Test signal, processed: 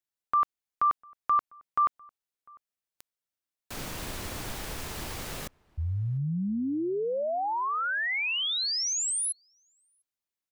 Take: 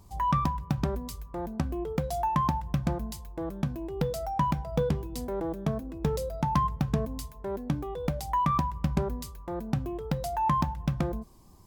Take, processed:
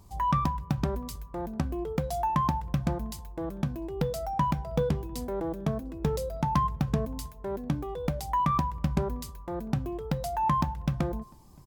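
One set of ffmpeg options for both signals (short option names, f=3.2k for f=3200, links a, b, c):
-filter_complex "[0:a]asplit=2[a][b];[b]adelay=699.7,volume=-27dB,highshelf=f=4k:g=-15.7[c];[a][c]amix=inputs=2:normalize=0"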